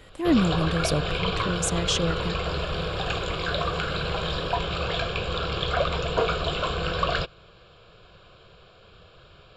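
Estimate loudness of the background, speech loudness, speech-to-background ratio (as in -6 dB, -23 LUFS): -27.5 LUFS, -27.0 LUFS, 0.5 dB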